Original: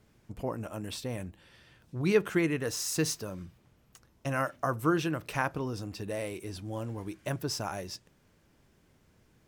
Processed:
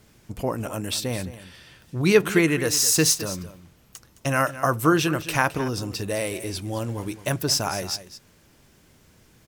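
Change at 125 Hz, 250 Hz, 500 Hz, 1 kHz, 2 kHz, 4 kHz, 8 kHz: +7.5, +7.5, +8.0, +8.5, +10.0, +13.0, +14.0 dB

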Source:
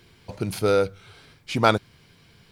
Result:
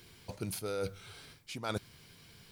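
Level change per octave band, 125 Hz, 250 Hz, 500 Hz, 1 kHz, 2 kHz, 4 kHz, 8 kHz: -13.0, -14.5, -16.0, -19.0, -16.0, -12.5, -5.0 dB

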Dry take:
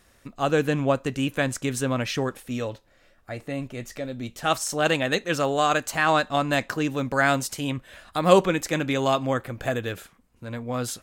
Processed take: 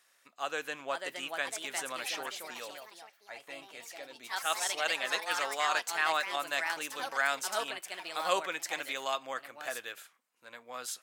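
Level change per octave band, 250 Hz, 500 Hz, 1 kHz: -24.5, -14.5, -8.0 dB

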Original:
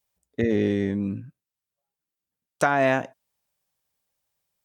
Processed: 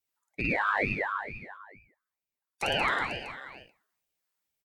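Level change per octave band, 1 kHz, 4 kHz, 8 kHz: -2.5, +7.5, -6.0 dB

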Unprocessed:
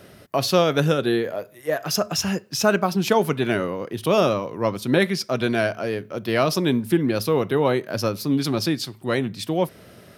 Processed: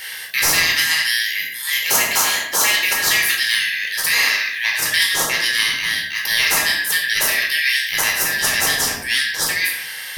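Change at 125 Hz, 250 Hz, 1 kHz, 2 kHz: -14.0, -16.5, -0.5, +14.0 dB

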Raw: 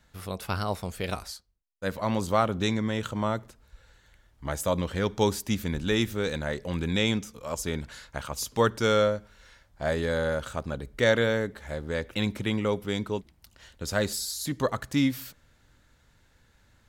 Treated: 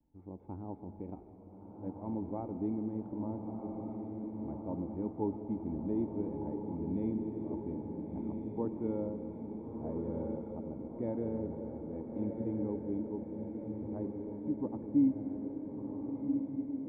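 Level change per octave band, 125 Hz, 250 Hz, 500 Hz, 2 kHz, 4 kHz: -10.5 dB, -3.0 dB, -12.0 dB, under -35 dB, under -40 dB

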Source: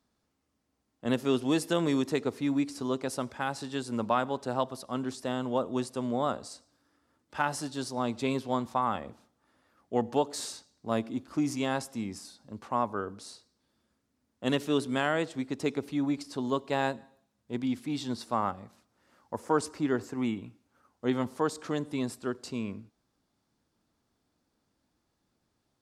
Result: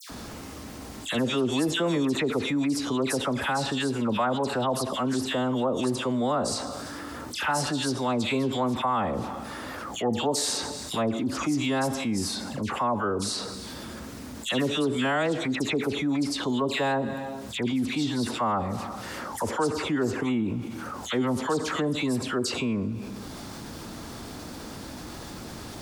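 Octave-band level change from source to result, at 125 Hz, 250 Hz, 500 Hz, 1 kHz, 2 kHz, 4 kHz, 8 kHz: +6.0, +4.5, +4.0, +4.0, +6.5, +10.0, +9.5 dB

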